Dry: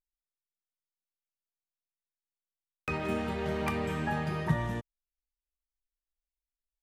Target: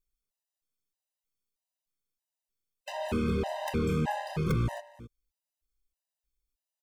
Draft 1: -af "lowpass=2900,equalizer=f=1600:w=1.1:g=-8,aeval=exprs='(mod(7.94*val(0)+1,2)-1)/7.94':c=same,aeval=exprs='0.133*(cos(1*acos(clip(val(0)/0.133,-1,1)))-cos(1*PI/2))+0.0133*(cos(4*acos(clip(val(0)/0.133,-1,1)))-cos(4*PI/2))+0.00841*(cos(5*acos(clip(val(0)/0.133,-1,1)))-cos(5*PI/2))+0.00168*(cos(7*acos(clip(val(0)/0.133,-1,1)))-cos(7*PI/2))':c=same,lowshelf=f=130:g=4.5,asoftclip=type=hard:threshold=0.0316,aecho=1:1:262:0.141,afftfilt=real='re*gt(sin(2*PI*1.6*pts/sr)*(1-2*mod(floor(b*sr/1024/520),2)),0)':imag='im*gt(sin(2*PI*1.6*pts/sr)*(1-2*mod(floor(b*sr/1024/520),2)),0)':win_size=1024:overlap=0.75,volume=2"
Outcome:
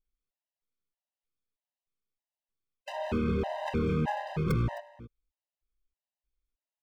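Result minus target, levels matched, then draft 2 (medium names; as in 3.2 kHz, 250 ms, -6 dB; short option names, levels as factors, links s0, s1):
4 kHz band -3.0 dB
-af "equalizer=f=1600:w=1.1:g=-8,aeval=exprs='(mod(7.94*val(0)+1,2)-1)/7.94':c=same,aeval=exprs='0.133*(cos(1*acos(clip(val(0)/0.133,-1,1)))-cos(1*PI/2))+0.0133*(cos(4*acos(clip(val(0)/0.133,-1,1)))-cos(4*PI/2))+0.00841*(cos(5*acos(clip(val(0)/0.133,-1,1)))-cos(5*PI/2))+0.00168*(cos(7*acos(clip(val(0)/0.133,-1,1)))-cos(7*PI/2))':c=same,lowshelf=f=130:g=4.5,asoftclip=type=hard:threshold=0.0316,aecho=1:1:262:0.141,afftfilt=real='re*gt(sin(2*PI*1.6*pts/sr)*(1-2*mod(floor(b*sr/1024/520),2)),0)':imag='im*gt(sin(2*PI*1.6*pts/sr)*(1-2*mod(floor(b*sr/1024/520),2)),0)':win_size=1024:overlap=0.75,volume=2"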